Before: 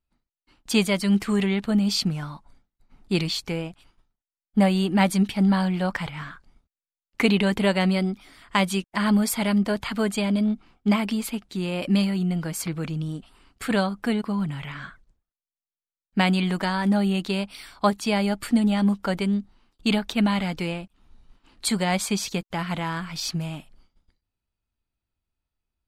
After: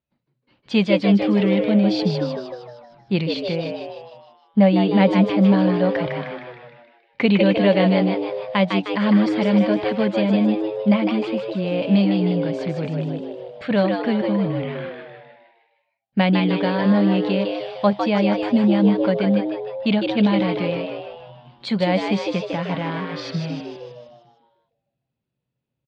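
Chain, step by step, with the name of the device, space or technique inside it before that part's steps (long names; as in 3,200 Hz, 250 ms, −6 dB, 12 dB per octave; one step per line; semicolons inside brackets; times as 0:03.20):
frequency-shifting delay pedal into a guitar cabinet (echo with shifted repeats 154 ms, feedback 52%, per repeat +110 Hz, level −4.5 dB; loudspeaker in its box 91–4,100 Hz, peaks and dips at 130 Hz +8 dB, 200 Hz +4 dB, 550 Hz +9 dB, 1,300 Hz −5 dB)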